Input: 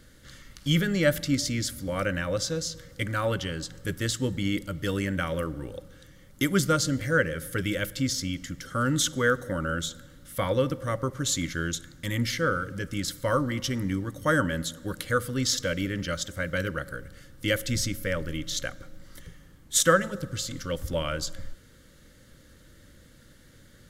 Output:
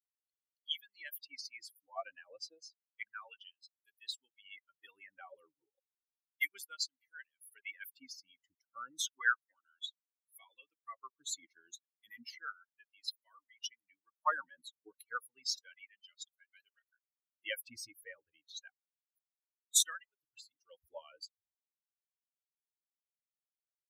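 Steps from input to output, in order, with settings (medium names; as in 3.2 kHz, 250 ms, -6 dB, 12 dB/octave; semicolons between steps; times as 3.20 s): expander on every frequency bin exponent 3; tilt EQ -4 dB/octave; harmonic-percussive split harmonic -18 dB; RIAA curve recording; LFO high-pass sine 0.32 Hz 530–4100 Hz; trim -3 dB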